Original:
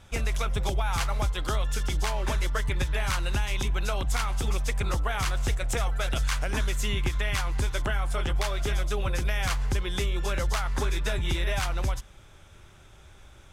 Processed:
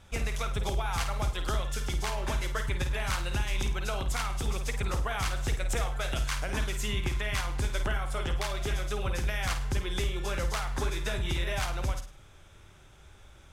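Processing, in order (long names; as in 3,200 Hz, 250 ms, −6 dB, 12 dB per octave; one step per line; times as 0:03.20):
flutter between parallel walls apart 8.9 metres, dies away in 0.37 s
level −3 dB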